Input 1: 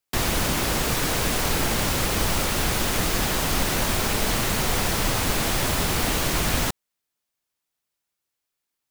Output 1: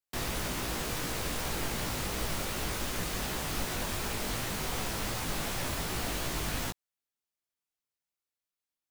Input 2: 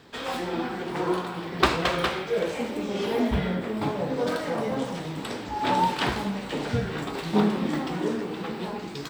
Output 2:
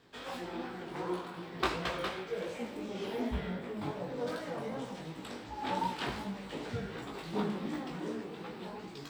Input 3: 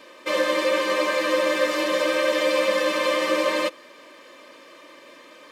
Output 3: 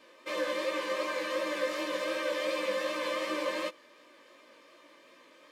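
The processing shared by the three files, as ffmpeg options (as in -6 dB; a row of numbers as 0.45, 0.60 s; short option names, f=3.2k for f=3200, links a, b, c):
-af "flanger=delay=16:depth=5.1:speed=2.7,volume=-7.5dB"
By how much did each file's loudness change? -10.5, -10.5, -10.5 LU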